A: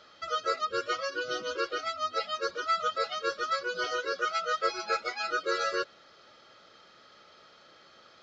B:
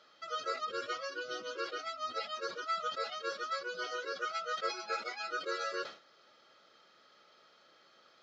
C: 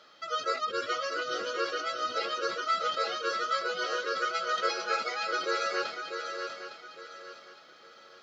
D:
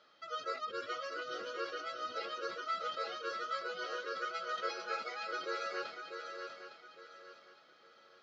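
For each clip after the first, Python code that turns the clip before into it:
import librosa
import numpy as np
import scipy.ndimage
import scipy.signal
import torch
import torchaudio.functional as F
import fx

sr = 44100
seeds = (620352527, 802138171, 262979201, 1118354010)

y1 = scipy.signal.sosfilt(scipy.signal.bessel(2, 190.0, 'highpass', norm='mag', fs=sr, output='sos'), x)
y1 = fx.sustainer(y1, sr, db_per_s=140.0)
y1 = F.gain(torch.from_numpy(y1), -7.0).numpy()
y2 = fx.echo_swing(y1, sr, ms=859, ratio=3, feedback_pct=32, wet_db=-7)
y2 = F.gain(torch.from_numpy(y2), 6.0).numpy()
y3 = fx.air_absorb(y2, sr, metres=71.0)
y3 = F.gain(torch.from_numpy(y3), -8.0).numpy()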